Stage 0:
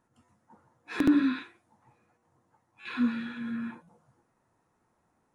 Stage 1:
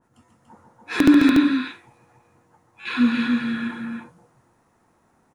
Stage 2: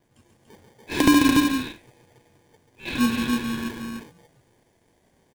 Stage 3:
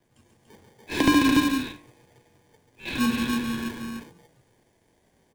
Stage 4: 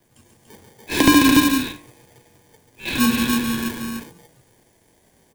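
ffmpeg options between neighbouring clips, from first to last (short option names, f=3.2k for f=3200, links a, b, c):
-af "aecho=1:1:139.9|288.6:0.398|0.631,adynamicequalizer=threshold=0.00447:dfrequency=2000:dqfactor=0.7:tfrequency=2000:tqfactor=0.7:attack=5:release=100:ratio=0.375:range=2:mode=boostabove:tftype=highshelf,volume=8.5dB"
-filter_complex "[0:a]aecho=1:1:1.9:0.31,acrossover=split=2000[a][b];[a]acrusher=samples=33:mix=1:aa=0.000001[c];[c][b]amix=inputs=2:normalize=0"
-filter_complex "[0:a]bandreject=f=49.04:t=h:w=4,bandreject=f=98.08:t=h:w=4,bandreject=f=147.12:t=h:w=4,bandreject=f=196.16:t=h:w=4,bandreject=f=245.2:t=h:w=4,bandreject=f=294.24:t=h:w=4,bandreject=f=343.28:t=h:w=4,bandreject=f=392.32:t=h:w=4,bandreject=f=441.36:t=h:w=4,bandreject=f=490.4:t=h:w=4,bandreject=f=539.44:t=h:w=4,bandreject=f=588.48:t=h:w=4,bandreject=f=637.52:t=h:w=4,bandreject=f=686.56:t=h:w=4,bandreject=f=735.6:t=h:w=4,bandreject=f=784.64:t=h:w=4,bandreject=f=833.68:t=h:w=4,bandreject=f=882.72:t=h:w=4,bandreject=f=931.76:t=h:w=4,bandreject=f=980.8:t=h:w=4,bandreject=f=1.02984k:t=h:w=4,bandreject=f=1.07888k:t=h:w=4,bandreject=f=1.12792k:t=h:w=4,bandreject=f=1.17696k:t=h:w=4,bandreject=f=1.226k:t=h:w=4,bandreject=f=1.27504k:t=h:w=4,bandreject=f=1.32408k:t=h:w=4,bandreject=f=1.37312k:t=h:w=4,bandreject=f=1.42216k:t=h:w=4,bandreject=f=1.4712k:t=h:w=4,acrossover=split=240|940|5200[a][b][c][d];[d]alimiter=limit=-22dB:level=0:latency=1[e];[a][b][c][e]amix=inputs=4:normalize=0,volume=-1dB"
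-af "highshelf=f=7k:g=10,volume=5.5dB"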